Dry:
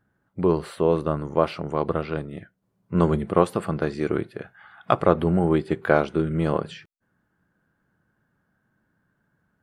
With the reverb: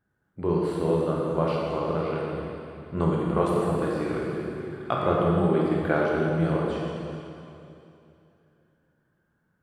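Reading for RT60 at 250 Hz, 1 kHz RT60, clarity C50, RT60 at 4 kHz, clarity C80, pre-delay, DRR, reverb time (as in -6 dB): 3.0 s, 2.8 s, -1.5 dB, 2.7 s, 0.0 dB, 15 ms, -4.0 dB, 2.8 s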